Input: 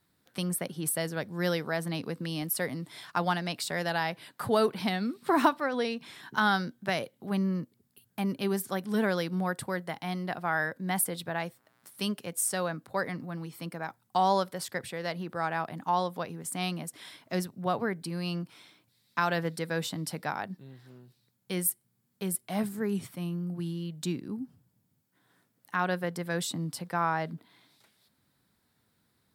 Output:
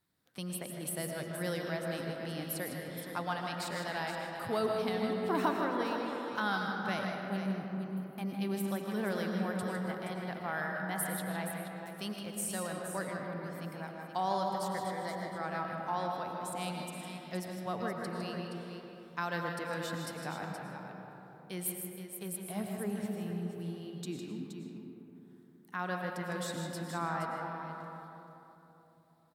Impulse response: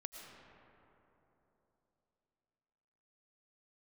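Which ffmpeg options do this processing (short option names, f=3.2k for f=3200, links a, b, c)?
-filter_complex "[0:a]asettb=1/sr,asplit=3[a][b][c];[a]atrim=end=14.794[d];[b]atrim=start=14.79:end=15.35,asetpts=PTS-STARTPTS,afade=t=in:d=0.004:c=qsin,afade=t=out:st=0.556:d=0.004:c=qsin,asuperstop=centerf=2700:order=4:qfactor=3.9[e];[c]atrim=start=15.346[f];[d][e]acrossfade=d=0.004:c1=hsin:c2=qsin[g];[g][f]acrossfade=d=0.004:c1=qsin:c2=hsin,aecho=1:1:156|472:0.376|0.355[h];[1:a]atrim=start_sample=2205[i];[h][i]afir=irnorm=-1:irlink=0,volume=-3dB"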